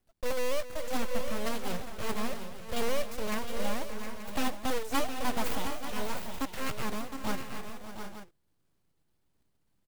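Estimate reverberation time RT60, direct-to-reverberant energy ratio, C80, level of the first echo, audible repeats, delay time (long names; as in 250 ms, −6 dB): no reverb audible, no reverb audible, no reverb audible, −14.5 dB, 5, 261 ms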